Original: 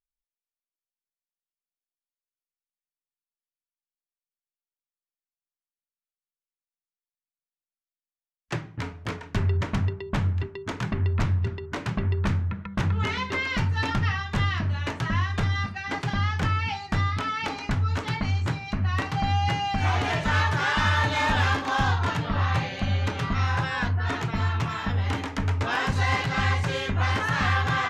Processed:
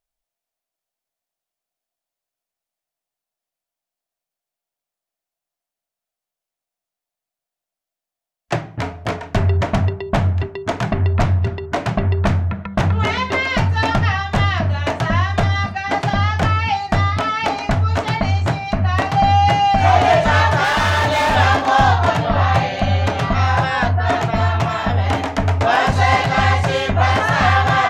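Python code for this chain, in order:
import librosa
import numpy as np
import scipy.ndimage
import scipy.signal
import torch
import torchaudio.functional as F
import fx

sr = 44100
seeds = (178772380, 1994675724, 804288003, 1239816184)

y = fx.peak_eq(x, sr, hz=680.0, db=13.5, octaves=0.47)
y = fx.clip_hard(y, sr, threshold_db=-20.5, at=(20.64, 21.36))
y = F.gain(torch.from_numpy(y), 7.5).numpy()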